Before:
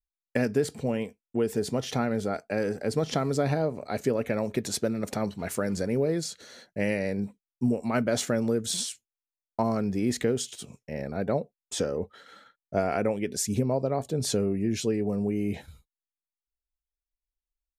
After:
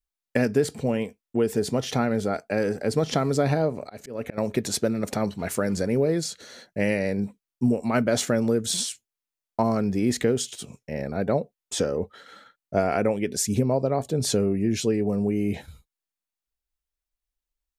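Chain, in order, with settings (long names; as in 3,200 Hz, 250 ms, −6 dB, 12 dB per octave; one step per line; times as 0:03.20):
0:03.71–0:04.38: volume swells 272 ms
level +3.5 dB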